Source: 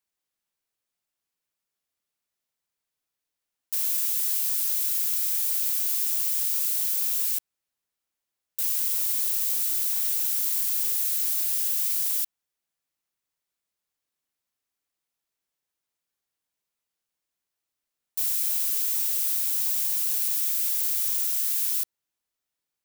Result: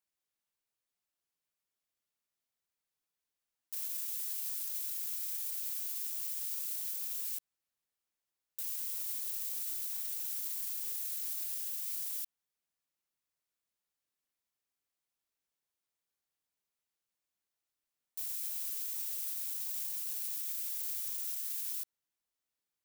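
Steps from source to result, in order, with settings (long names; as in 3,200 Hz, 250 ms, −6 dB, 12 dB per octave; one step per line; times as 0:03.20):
brickwall limiter −23.5 dBFS, peak gain reduction 10.5 dB
level −5 dB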